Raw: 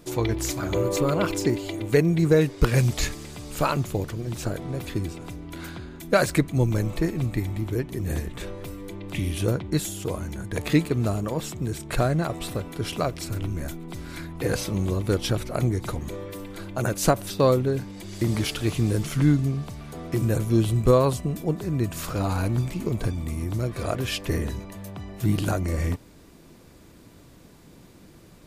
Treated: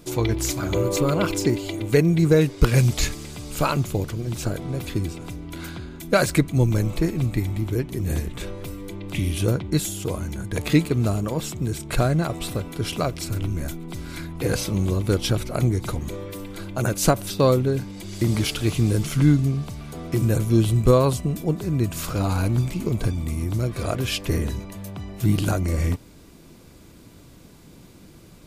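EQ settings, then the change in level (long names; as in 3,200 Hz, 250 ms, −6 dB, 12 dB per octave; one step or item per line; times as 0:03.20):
parametric band 750 Hz −3 dB 2.5 octaves
notch filter 1,800 Hz, Q 15
+3.5 dB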